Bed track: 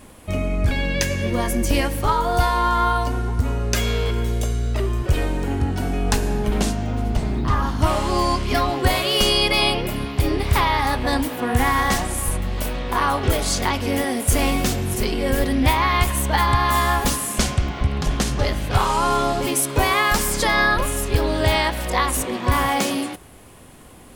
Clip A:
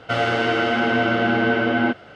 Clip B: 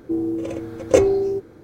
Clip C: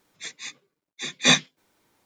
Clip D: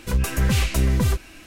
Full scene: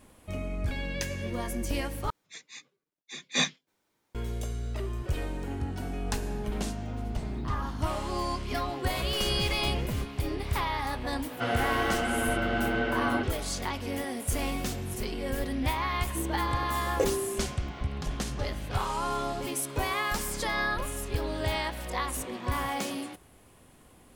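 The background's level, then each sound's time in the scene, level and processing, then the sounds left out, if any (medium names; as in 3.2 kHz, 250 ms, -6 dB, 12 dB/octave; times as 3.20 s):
bed track -11.5 dB
2.10 s: replace with C -9 dB
8.89 s: add D -13 dB + tracing distortion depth 0.073 ms
11.31 s: add A -9.5 dB
16.06 s: add B -13 dB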